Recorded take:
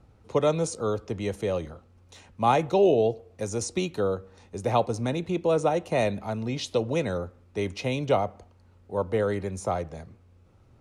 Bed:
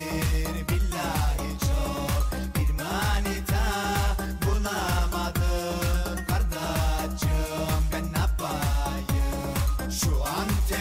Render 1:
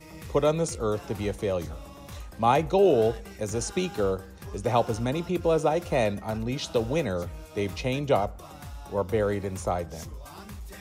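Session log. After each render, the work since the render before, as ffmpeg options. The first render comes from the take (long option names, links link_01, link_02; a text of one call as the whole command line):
ffmpeg -i in.wav -i bed.wav -filter_complex "[1:a]volume=-16dB[link_01];[0:a][link_01]amix=inputs=2:normalize=0" out.wav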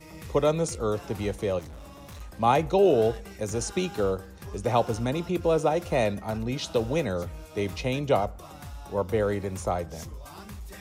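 ffmpeg -i in.wav -filter_complex "[0:a]asettb=1/sr,asplit=3[link_01][link_02][link_03];[link_01]atrim=end=1.594[link_04];[link_02]atrim=start=1.59:end=2.21,asetpts=PTS-STARTPTS,afade=type=in:duration=0.004:curve=qsin,afade=type=out:start_time=0.616:duration=0.004:curve=qsin,asoftclip=type=hard:threshold=-40dB[link_05];[link_03]atrim=start=2.206[link_06];[link_04][link_05]acrossfade=duration=0.004:curve1=hsin:curve2=qsin[link_07];[link_07][link_06]acrossfade=duration=0.004:curve1=qsin:curve2=hsin" out.wav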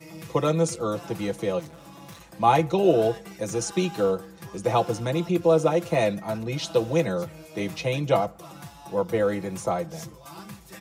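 ffmpeg -i in.wav -af "highpass=frequency=87:width=0.5412,highpass=frequency=87:width=1.3066,aecho=1:1:6:0.76" out.wav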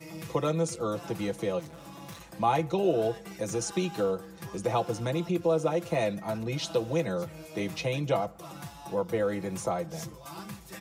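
ffmpeg -i in.wav -af "acompressor=threshold=-33dB:ratio=1.5" out.wav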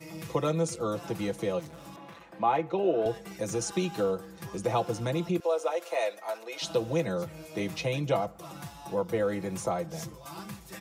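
ffmpeg -i in.wav -filter_complex "[0:a]asettb=1/sr,asplit=3[link_01][link_02][link_03];[link_01]atrim=end=1.964[link_04];[link_02]atrim=start=1.96:end=3.06,asetpts=PTS-STARTPTS,afade=type=in:duration=0.004:curve=qsin,afade=type=out:start_time=1.096:duration=0.004:curve=qsin,acrossover=split=210 3200:gain=0.224 1 0.141[link_05][link_06][link_07];[link_05][link_06][link_07]amix=inputs=3:normalize=0[link_08];[link_03]atrim=start=3.056[link_09];[link_04][link_08]acrossfade=duration=0.004:curve1=hsin:curve2=qsin[link_10];[link_10][link_09]acrossfade=duration=0.004:curve1=qsin:curve2=hsin,asettb=1/sr,asplit=3[link_11][link_12][link_13];[link_11]atrim=end=5.404[link_14];[link_12]atrim=start=5.4:end=6.62,asetpts=PTS-STARTPTS,afade=type=in:duration=0.004:curve=qsin,afade=type=out:start_time=1.216:duration=0.004:curve=qsin,highpass=frequency=470:width=0.5412,highpass=frequency=470:width=1.3066[link_15];[link_13]atrim=start=6.616[link_16];[link_14][link_15]acrossfade=duration=0.004:curve1=hsin:curve2=qsin[link_17];[link_17][link_16]acrossfade=duration=0.004:curve1=qsin:curve2=hsin" out.wav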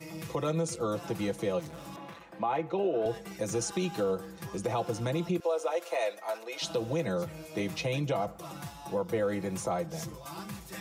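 ffmpeg -i in.wav -af "areverse,acompressor=mode=upward:threshold=-38dB:ratio=2.5,areverse,alimiter=limit=-21dB:level=0:latency=1:release=67" out.wav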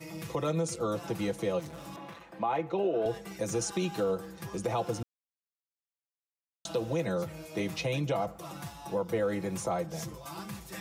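ffmpeg -i in.wav -filter_complex "[0:a]asplit=3[link_01][link_02][link_03];[link_01]atrim=end=5.03,asetpts=PTS-STARTPTS,afade=type=out:start_time=5.026:duration=0.004:curve=hsin[link_04];[link_02]atrim=start=5.03:end=6.65,asetpts=PTS-STARTPTS,volume=0[link_05];[link_03]atrim=start=6.65,asetpts=PTS-STARTPTS,afade=type=in:duration=0.004:curve=hsin[link_06];[link_04][link_05][link_06]concat=n=3:v=0:a=1" out.wav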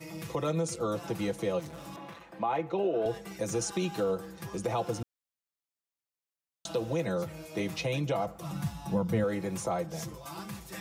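ffmpeg -i in.wav -filter_complex "[0:a]asettb=1/sr,asplit=3[link_01][link_02][link_03];[link_01]atrim=end=8.424[link_04];[link_02]atrim=start=8.42:end=9.24,asetpts=PTS-STARTPTS,afade=type=in:duration=0.004:curve=qsin,afade=type=out:start_time=0.816:duration=0.004:curve=qsin,lowshelf=frequency=270:width_type=q:width=1.5:gain=8.5[link_05];[link_03]atrim=start=9.236[link_06];[link_04][link_05]acrossfade=duration=0.004:curve1=hsin:curve2=qsin[link_07];[link_07][link_06]acrossfade=duration=0.004:curve1=qsin:curve2=hsin" out.wav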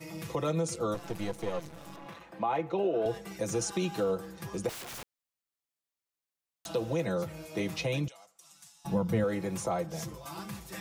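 ffmpeg -i in.wav -filter_complex "[0:a]asettb=1/sr,asplit=3[link_01][link_02][link_03];[link_01]atrim=end=0.944[link_04];[link_02]atrim=start=0.94:end=2.06,asetpts=PTS-STARTPTS,afade=type=in:duration=0.004:curve=qsin,afade=type=out:start_time=1.116:duration=0.004:curve=qsin,aeval=exprs='if(lt(val(0),0),0.251*val(0),val(0))':channel_layout=same[link_05];[link_03]atrim=start=2.056[link_06];[link_04][link_05]acrossfade=duration=0.004:curve1=hsin:curve2=qsin[link_07];[link_07][link_06]acrossfade=duration=0.004:curve1=qsin:curve2=hsin,asettb=1/sr,asplit=3[link_08][link_09][link_10];[link_08]atrim=end=4.694[link_11];[link_09]atrim=start=4.69:end=6.66,asetpts=PTS-STARTPTS,afade=type=in:duration=0.004:curve=qsin,afade=type=out:start_time=1.966:duration=0.004:curve=qsin,aeval=exprs='(mod(75*val(0)+1,2)-1)/75':channel_layout=same[link_12];[link_10]atrim=start=6.656[link_13];[link_11][link_12]acrossfade=duration=0.004:curve1=hsin:curve2=qsin[link_14];[link_14][link_13]acrossfade=duration=0.004:curve1=qsin:curve2=hsin,asettb=1/sr,asplit=3[link_15][link_16][link_17];[link_15]atrim=end=8.084[link_18];[link_16]atrim=start=8.08:end=8.85,asetpts=PTS-STARTPTS,afade=type=in:duration=0.004:curve=qsin,afade=type=out:start_time=0.766:duration=0.004:curve=qsin,bandpass=frequency=7500:width_type=q:width=1.6[link_19];[link_17]atrim=start=8.846[link_20];[link_18][link_19]acrossfade=duration=0.004:curve1=hsin:curve2=qsin[link_21];[link_21][link_20]acrossfade=duration=0.004:curve1=qsin:curve2=hsin" out.wav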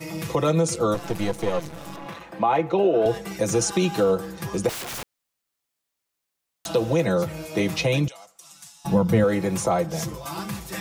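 ffmpeg -i in.wav -af "volume=9.5dB" out.wav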